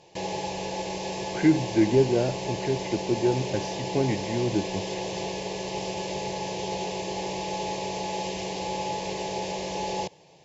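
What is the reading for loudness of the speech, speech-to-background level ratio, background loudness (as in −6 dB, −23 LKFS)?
−26.5 LKFS, 5.5 dB, −32.0 LKFS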